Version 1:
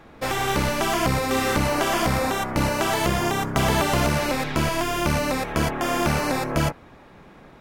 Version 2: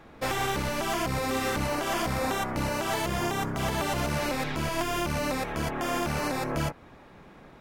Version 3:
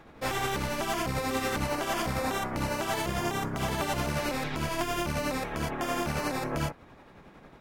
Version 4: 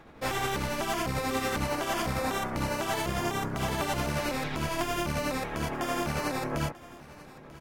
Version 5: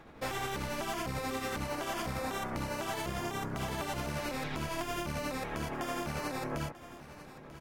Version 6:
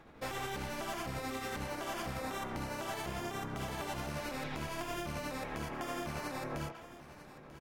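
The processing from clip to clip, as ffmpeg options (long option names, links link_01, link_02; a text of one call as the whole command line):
ffmpeg -i in.wav -af "alimiter=limit=-16dB:level=0:latency=1:release=170,volume=-3dB" out.wav
ffmpeg -i in.wav -af "tremolo=f=11:d=0.36" out.wav
ffmpeg -i in.wav -af "aecho=1:1:940:0.112" out.wav
ffmpeg -i in.wav -af "acompressor=threshold=-31dB:ratio=6,volume=-1.5dB" out.wav
ffmpeg -i in.wav -filter_complex "[0:a]asplit=2[link_01][link_02];[link_02]adelay=140,highpass=300,lowpass=3400,asoftclip=type=hard:threshold=-32dB,volume=-7dB[link_03];[link_01][link_03]amix=inputs=2:normalize=0,volume=-3.5dB" out.wav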